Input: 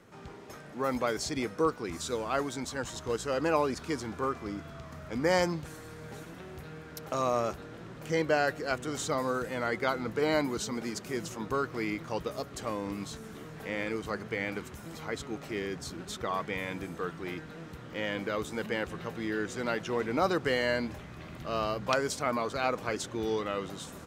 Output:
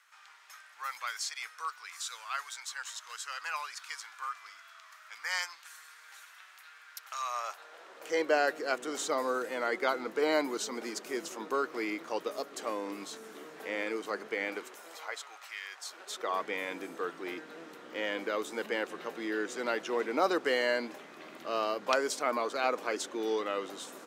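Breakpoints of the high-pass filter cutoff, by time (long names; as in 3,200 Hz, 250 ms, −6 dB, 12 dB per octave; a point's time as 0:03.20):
high-pass filter 24 dB per octave
0:07.19 1,200 Hz
0:08.33 290 Hz
0:14.48 290 Hz
0:15.59 1,100 Hz
0:16.39 280 Hz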